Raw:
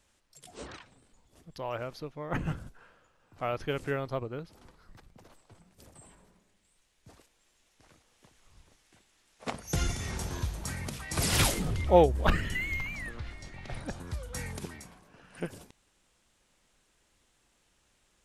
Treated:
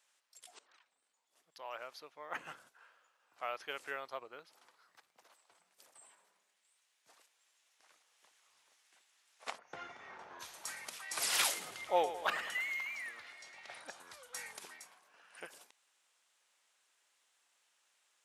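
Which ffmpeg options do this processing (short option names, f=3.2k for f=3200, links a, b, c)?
-filter_complex "[0:a]asplit=3[a][b][c];[a]afade=t=out:st=9.57:d=0.02[d];[b]lowpass=1.5k,afade=t=in:st=9.57:d=0.02,afade=t=out:st=10.39:d=0.02[e];[c]afade=t=in:st=10.39:d=0.02[f];[d][e][f]amix=inputs=3:normalize=0,asettb=1/sr,asplit=3[g][h][i];[g]atrim=end=11.514[j];[h]atrim=start=11.51:end=13.79,asetpts=PTS-STARTPTS,afade=t=in:d=0.004:c=qsin,afade=t=out:st=2.276:d=0.004:c=qsin,aecho=1:1:106|212|318|424|530|636:0.266|0.141|0.0747|0.0396|0.021|0.0111,atrim=end_sample=100548[k];[i]atrim=start=13.786[l];[j][k]acrossfade=d=0.004:c1=hsin:c2=qsin[m];[m][l]acrossfade=d=0.004:c1=qsin:c2=hsin,asplit=2[n][o];[n]atrim=end=0.59,asetpts=PTS-STARTPTS,afade=t=out:st=0.586:d=0.004:c=hsin:silence=0.0630957[p];[o]atrim=start=0.59,asetpts=PTS-STARTPTS,afade=t=in:d=1.37:silence=0.0630957[q];[p][q]concat=n=2:v=0:a=1,highpass=830,volume=-3.5dB"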